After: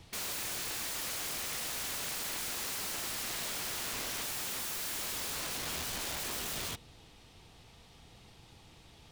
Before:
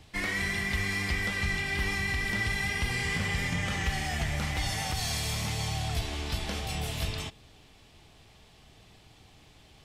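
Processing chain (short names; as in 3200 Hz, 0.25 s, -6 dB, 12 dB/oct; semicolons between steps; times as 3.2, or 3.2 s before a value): varispeed +8%; wrapped overs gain 32 dB; gain -1 dB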